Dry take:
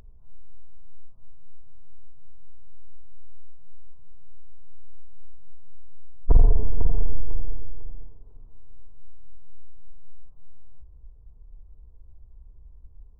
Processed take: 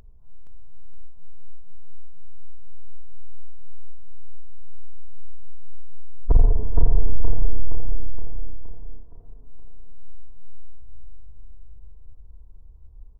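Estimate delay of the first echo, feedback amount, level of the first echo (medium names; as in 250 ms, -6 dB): 469 ms, 55%, -4.0 dB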